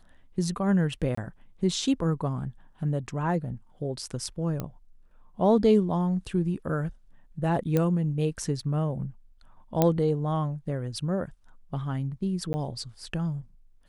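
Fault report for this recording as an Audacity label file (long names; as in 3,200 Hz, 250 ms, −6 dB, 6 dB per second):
1.150000	1.170000	drop-out 24 ms
4.600000	4.600000	click −18 dBFS
7.770000	7.770000	click −13 dBFS
9.820000	9.820000	click −8 dBFS
12.530000	12.540000	drop-out 10 ms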